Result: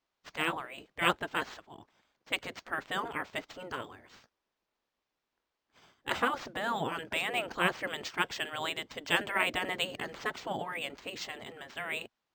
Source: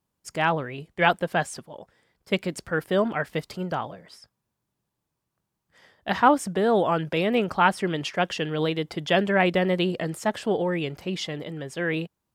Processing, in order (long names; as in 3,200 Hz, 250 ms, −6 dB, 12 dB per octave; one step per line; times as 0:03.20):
gate on every frequency bin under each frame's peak −10 dB weak
linearly interpolated sample-rate reduction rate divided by 4×